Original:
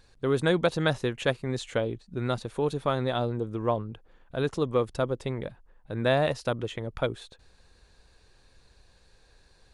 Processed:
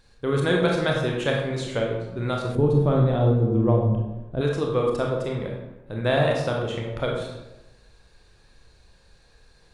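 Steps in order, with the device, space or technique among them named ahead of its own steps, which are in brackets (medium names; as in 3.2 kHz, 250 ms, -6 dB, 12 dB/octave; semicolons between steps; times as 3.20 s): bathroom (reverberation RT60 1.0 s, pre-delay 24 ms, DRR -1 dB); 2.55–4.41 s: tilt shelf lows +9.5 dB, about 640 Hz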